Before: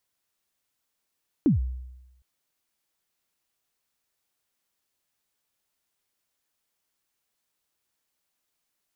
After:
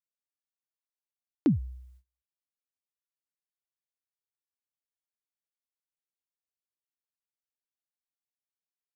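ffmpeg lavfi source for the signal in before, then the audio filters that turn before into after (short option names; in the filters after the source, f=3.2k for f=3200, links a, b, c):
-f lavfi -i "aevalsrc='0.188*pow(10,-3*t/0.99)*sin(2*PI*(340*0.134/log(63/340)*(exp(log(63/340)*min(t,0.134)/0.134)-1)+63*max(t-0.134,0)))':d=0.76:s=44100"
-af "agate=range=-26dB:threshold=-48dB:ratio=16:detection=peak,highpass=f=150:p=1"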